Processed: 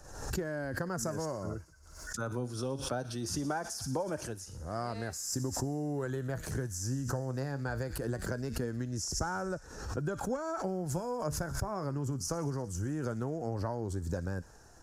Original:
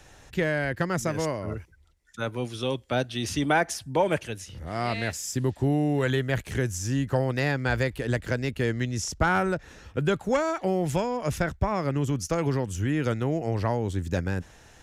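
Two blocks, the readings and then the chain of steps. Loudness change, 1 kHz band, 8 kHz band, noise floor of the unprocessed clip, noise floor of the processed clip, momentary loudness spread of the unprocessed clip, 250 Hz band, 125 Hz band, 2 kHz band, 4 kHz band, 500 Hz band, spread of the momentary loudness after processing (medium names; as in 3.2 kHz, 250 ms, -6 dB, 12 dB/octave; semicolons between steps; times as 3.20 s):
-8.5 dB, -9.5 dB, -2.0 dB, -54 dBFS, -53 dBFS, 8 LU, -8.5 dB, -8.0 dB, -13.0 dB, -7.5 dB, -9.0 dB, 5 LU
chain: flange 0.21 Hz, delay 1.6 ms, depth 6.7 ms, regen +70%; compression, threshold -31 dBFS, peak gain reduction 10 dB; high-order bell 2.7 kHz -15.5 dB 1.2 oct; feedback echo behind a high-pass 60 ms, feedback 79%, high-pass 2.7 kHz, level -13.5 dB; swell ahead of each attack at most 60 dB/s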